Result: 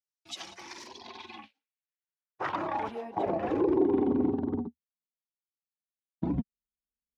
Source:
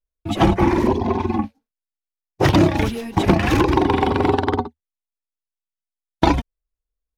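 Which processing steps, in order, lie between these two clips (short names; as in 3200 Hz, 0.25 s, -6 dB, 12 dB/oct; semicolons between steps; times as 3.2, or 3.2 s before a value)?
limiter -13.5 dBFS, peak gain reduction 10.5 dB; band-pass sweep 5400 Hz -> 200 Hz, 0.82–4.51; gain +1.5 dB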